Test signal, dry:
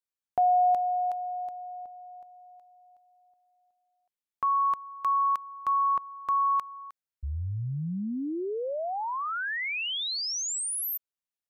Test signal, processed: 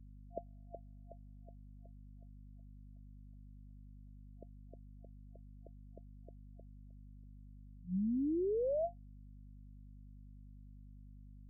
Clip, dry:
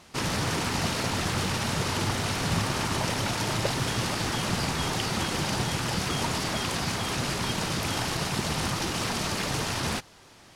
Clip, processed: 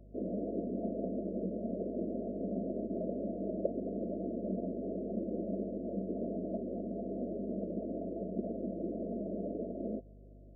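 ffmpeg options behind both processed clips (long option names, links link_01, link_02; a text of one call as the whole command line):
ffmpeg -i in.wav -af "afftfilt=real='re*between(b*sr/4096,180,690)':imag='im*between(b*sr/4096,180,690)':win_size=4096:overlap=0.75,aeval=exprs='val(0)+0.00282*(sin(2*PI*50*n/s)+sin(2*PI*2*50*n/s)/2+sin(2*PI*3*50*n/s)/3+sin(2*PI*4*50*n/s)/4+sin(2*PI*5*50*n/s)/5)':channel_layout=same,volume=-2.5dB" out.wav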